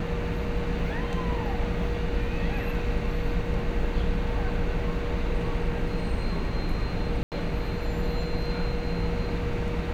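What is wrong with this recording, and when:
7.23–7.32 s: dropout 88 ms

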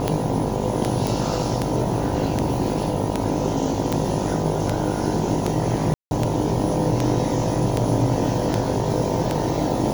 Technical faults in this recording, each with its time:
buzz 50 Hz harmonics 20 -27 dBFS
tick 78 rpm -7 dBFS
1.07 s: pop
3.92 s: pop
5.94–6.11 s: dropout 170 ms

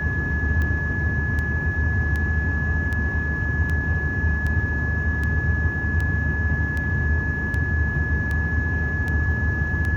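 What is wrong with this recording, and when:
tick 78 rpm -16 dBFS
whine 1.7 kHz -26 dBFS

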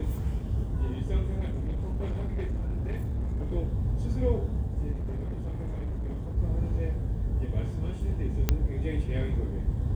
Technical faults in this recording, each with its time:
1.39–3.54 s: clipped -27 dBFS
4.91–6.38 s: clipped -29 dBFS
8.49 s: pop -10 dBFS

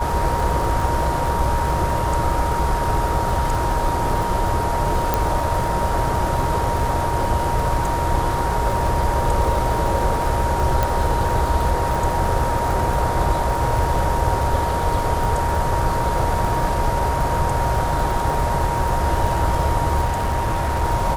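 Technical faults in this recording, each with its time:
crackle 91 per s -25 dBFS
whine 940 Hz -23 dBFS
5.14 s: pop
10.83 s: pop
20.04–20.84 s: clipped -17 dBFS

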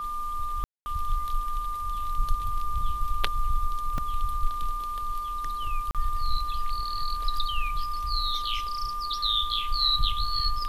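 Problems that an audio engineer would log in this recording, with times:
whine 1.2 kHz -30 dBFS
0.64–0.86 s: dropout 220 ms
3.98 s: dropout 2.4 ms
5.91–5.95 s: dropout 37 ms

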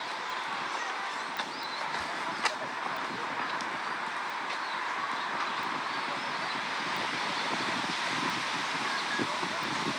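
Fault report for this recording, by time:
tick 45 rpm
1.37 s: pop

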